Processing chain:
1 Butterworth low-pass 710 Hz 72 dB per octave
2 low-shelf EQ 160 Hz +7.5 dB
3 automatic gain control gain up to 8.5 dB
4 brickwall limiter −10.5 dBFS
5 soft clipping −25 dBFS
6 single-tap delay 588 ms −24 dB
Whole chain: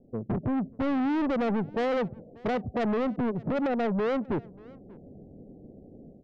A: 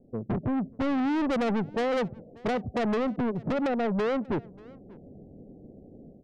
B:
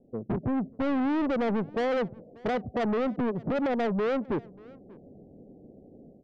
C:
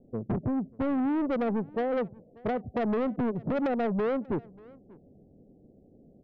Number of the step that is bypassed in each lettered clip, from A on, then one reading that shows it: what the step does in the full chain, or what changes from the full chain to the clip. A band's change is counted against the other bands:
4, change in momentary loudness spread −2 LU
2, 125 Hz band −2.0 dB
3, 4 kHz band −5.5 dB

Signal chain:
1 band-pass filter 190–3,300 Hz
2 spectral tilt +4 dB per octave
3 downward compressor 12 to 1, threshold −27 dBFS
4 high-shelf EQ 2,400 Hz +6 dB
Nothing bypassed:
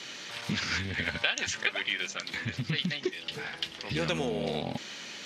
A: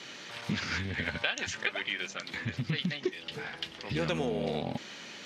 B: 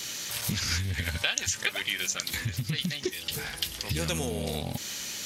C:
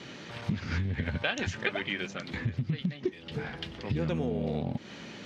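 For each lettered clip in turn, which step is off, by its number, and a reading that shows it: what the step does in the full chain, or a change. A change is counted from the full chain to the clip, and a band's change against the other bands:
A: 4, 8 kHz band −4.5 dB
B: 1, 8 kHz band +11.0 dB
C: 2, 8 kHz band −10.0 dB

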